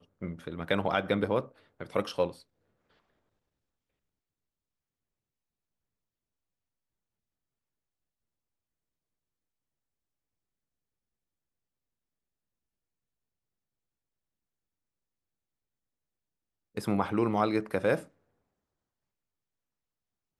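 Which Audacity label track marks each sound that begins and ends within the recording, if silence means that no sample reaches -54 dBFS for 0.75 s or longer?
16.750000	18.080000	sound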